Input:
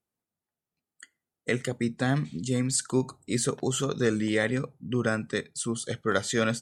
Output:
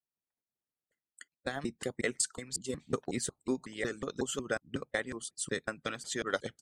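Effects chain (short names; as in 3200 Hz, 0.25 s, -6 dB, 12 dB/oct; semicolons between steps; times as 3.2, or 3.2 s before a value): slices in reverse order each 0.183 s, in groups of 4; harmonic-percussive split harmonic -17 dB; transient shaper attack +4 dB, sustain -3 dB; gain -6 dB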